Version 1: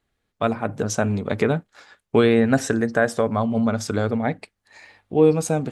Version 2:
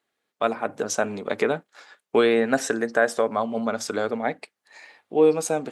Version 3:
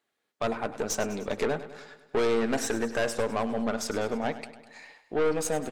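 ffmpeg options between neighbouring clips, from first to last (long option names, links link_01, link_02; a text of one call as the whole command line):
ffmpeg -i in.wav -af "highpass=340" out.wav
ffmpeg -i in.wav -af "aeval=exprs='(tanh(12.6*val(0)+0.45)-tanh(0.45))/12.6':channel_layout=same,aecho=1:1:101|202|303|404|505|606:0.2|0.118|0.0695|0.041|0.0242|0.0143" out.wav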